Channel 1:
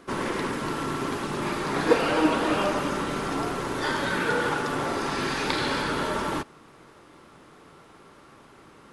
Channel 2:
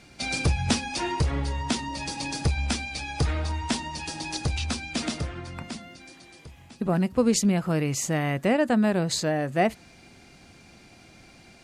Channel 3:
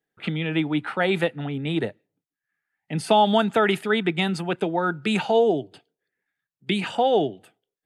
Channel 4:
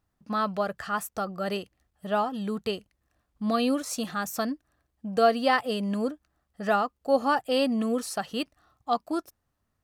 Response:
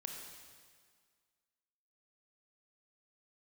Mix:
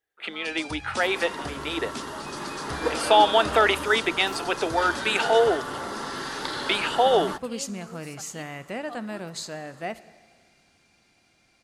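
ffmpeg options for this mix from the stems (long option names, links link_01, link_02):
-filter_complex "[0:a]equalizer=frequency=2400:width=6.2:gain=-15,adelay=950,volume=-5dB[link_01];[1:a]adelay=250,volume=-11.5dB,asplit=2[link_02][link_03];[link_03]volume=-8dB[link_04];[2:a]highpass=frequency=330:width=0.5412,highpass=frequency=330:width=1.3066,volume=1dB[link_05];[3:a]volume=-16.5dB[link_06];[4:a]atrim=start_sample=2205[link_07];[link_04][link_07]afir=irnorm=-1:irlink=0[link_08];[link_01][link_02][link_05][link_06][link_08]amix=inputs=5:normalize=0,lowshelf=frequency=500:gain=-8,dynaudnorm=framelen=420:gausssize=9:maxgain=3dB"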